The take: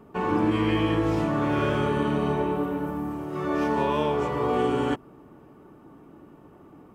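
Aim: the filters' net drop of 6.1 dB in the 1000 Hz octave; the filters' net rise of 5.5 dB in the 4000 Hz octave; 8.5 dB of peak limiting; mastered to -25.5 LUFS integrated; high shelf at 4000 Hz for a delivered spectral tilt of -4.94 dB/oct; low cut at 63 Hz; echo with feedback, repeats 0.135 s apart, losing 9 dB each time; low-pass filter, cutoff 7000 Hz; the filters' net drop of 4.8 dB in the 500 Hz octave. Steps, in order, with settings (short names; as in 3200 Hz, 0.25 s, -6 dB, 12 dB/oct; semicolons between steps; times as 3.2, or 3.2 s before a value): HPF 63 Hz; LPF 7000 Hz; bell 500 Hz -5 dB; bell 1000 Hz -6.5 dB; high shelf 4000 Hz +5 dB; bell 4000 Hz +6 dB; limiter -23 dBFS; feedback echo 0.135 s, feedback 35%, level -9 dB; gain +6 dB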